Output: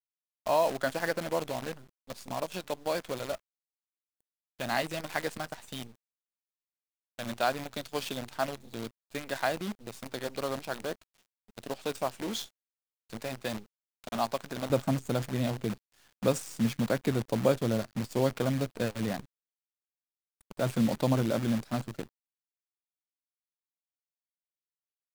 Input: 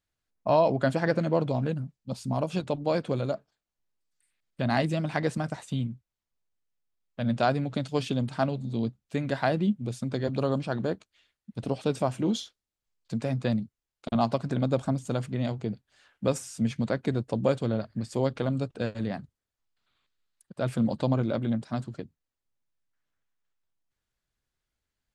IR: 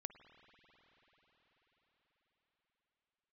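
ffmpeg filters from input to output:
-af "asetnsamples=nb_out_samples=441:pad=0,asendcmd='14.7 highpass f 100',highpass=frequency=790:poles=1,acrusher=bits=7:dc=4:mix=0:aa=0.000001"

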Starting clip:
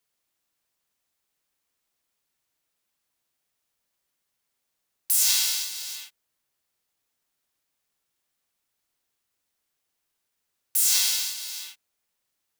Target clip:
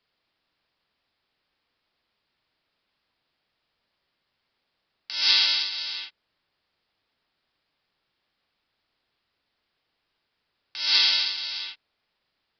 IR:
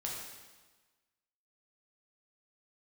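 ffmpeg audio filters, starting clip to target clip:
-af "aresample=11025,aresample=44100,volume=7.5dB"

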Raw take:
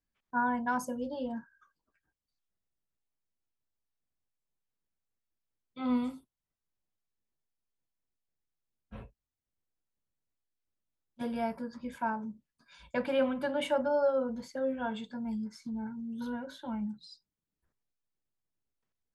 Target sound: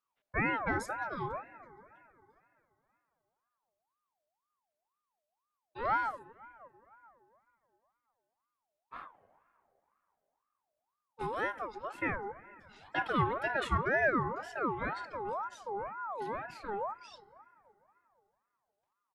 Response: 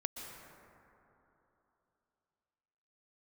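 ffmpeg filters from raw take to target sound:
-filter_complex "[0:a]asetrate=40440,aresample=44100,atempo=1.09051,asplit=2[link_01][link_02];[1:a]atrim=start_sample=2205,lowpass=2000[link_03];[link_02][link_03]afir=irnorm=-1:irlink=0,volume=-12dB[link_04];[link_01][link_04]amix=inputs=2:normalize=0,aeval=exprs='val(0)*sin(2*PI*910*n/s+910*0.35/2*sin(2*PI*2*n/s))':channel_layout=same"

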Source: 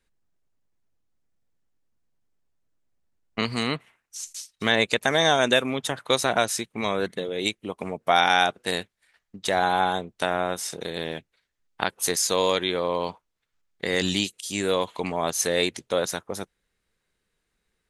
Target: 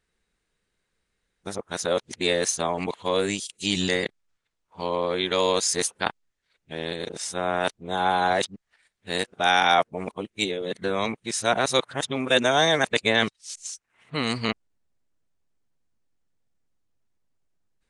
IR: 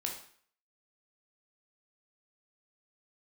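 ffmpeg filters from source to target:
-af "areverse,aresample=22050,aresample=44100"

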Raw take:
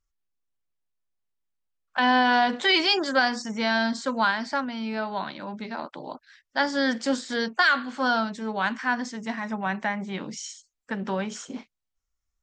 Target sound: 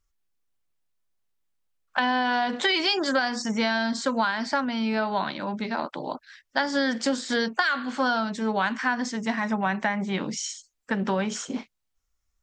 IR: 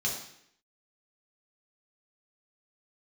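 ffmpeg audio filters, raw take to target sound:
-af "acompressor=threshold=-25dB:ratio=10,volume=5dB"

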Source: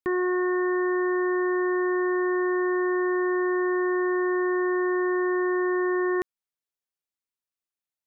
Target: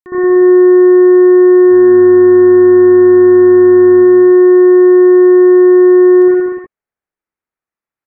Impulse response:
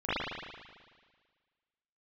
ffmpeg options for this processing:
-filter_complex "[0:a]asplit=3[link_01][link_02][link_03];[link_01]afade=type=out:start_time=1.63:duration=0.02[link_04];[link_02]asplit=6[link_05][link_06][link_07][link_08][link_09][link_10];[link_06]adelay=119,afreqshift=-130,volume=-15.5dB[link_11];[link_07]adelay=238,afreqshift=-260,volume=-20.7dB[link_12];[link_08]adelay=357,afreqshift=-390,volume=-25.9dB[link_13];[link_09]adelay=476,afreqshift=-520,volume=-31.1dB[link_14];[link_10]adelay=595,afreqshift=-650,volume=-36.3dB[link_15];[link_05][link_11][link_12][link_13][link_14][link_15]amix=inputs=6:normalize=0,afade=type=in:start_time=1.63:duration=0.02,afade=type=out:start_time=3.95:duration=0.02[link_16];[link_03]afade=type=in:start_time=3.95:duration=0.02[link_17];[link_04][link_16][link_17]amix=inputs=3:normalize=0[link_18];[1:a]atrim=start_sample=2205,afade=type=out:start_time=0.32:duration=0.01,atrim=end_sample=14553,asetrate=27342,aresample=44100[link_19];[link_18][link_19]afir=irnorm=-1:irlink=0,volume=-4.5dB"

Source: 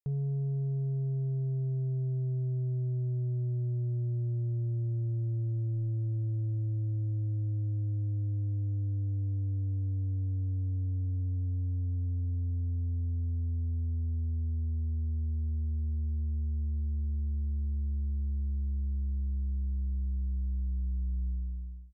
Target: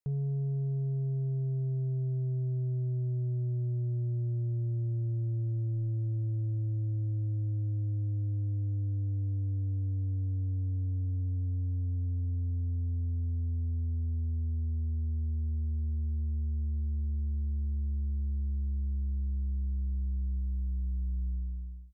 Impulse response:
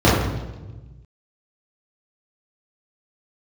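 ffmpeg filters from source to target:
-filter_complex "[0:a]asettb=1/sr,asplit=3[link_01][link_02][link_03];[link_01]atrim=end=20.394[link_04];[link_02]atrim=start=20.39:end=21.33,asetpts=PTS-STARTPTS,afade=type=in:duration=0.004:curve=qsin,afade=type=out:start_time=0.936:duration=0.004:curve=qsin,aemphasis=mode=production:type=cd[link_05];[link_03]atrim=start=21.326[link_06];[link_04][link_05]acrossfade=duration=0.004:curve1=hsin:curve2=qsin[link_07];[link_07][link_06]acrossfade=duration=0.004:curve1=qsin:curve2=hsin"

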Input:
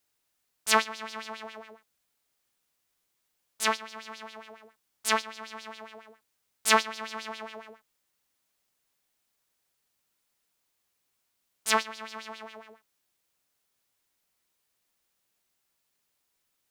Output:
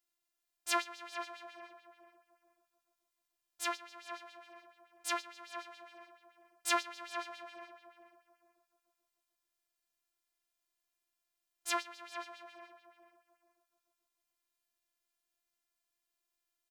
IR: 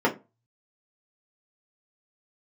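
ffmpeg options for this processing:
-filter_complex "[0:a]afftfilt=real='hypot(re,im)*cos(PI*b)':imag='0':win_size=512:overlap=0.75,asplit=2[link_01][link_02];[link_02]adelay=437,lowpass=frequency=1500:poles=1,volume=-7dB,asplit=2[link_03][link_04];[link_04]adelay=437,lowpass=frequency=1500:poles=1,volume=0.31,asplit=2[link_05][link_06];[link_06]adelay=437,lowpass=frequency=1500:poles=1,volume=0.31,asplit=2[link_07][link_08];[link_08]adelay=437,lowpass=frequency=1500:poles=1,volume=0.31[link_09];[link_01][link_03][link_05][link_07][link_09]amix=inputs=5:normalize=0,volume=-6dB"

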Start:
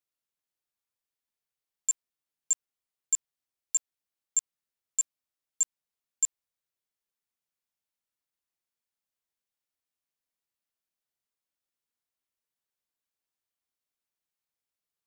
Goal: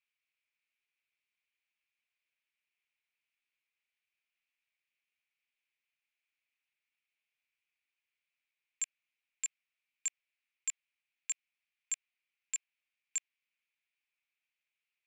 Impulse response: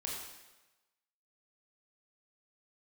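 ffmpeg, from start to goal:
-af "areverse,bandpass=frequency=2400:width_type=q:width=5.8:csg=0,volume=15.5dB"

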